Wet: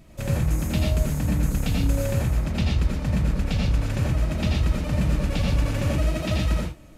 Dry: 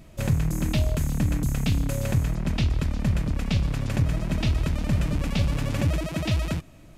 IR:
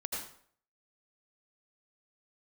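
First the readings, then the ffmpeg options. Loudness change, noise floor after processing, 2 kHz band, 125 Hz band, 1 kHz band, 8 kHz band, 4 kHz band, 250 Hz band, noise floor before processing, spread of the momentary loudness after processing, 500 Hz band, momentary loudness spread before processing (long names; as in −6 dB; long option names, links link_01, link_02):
+1.5 dB, −46 dBFS, +1.0 dB, +1.0 dB, +2.0 dB, +1.0 dB, +1.0 dB, +1.0 dB, −48 dBFS, 1 LU, +3.5 dB, 2 LU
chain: -filter_complex "[1:a]atrim=start_sample=2205,atrim=end_sample=6615[link_01];[0:a][link_01]afir=irnorm=-1:irlink=0"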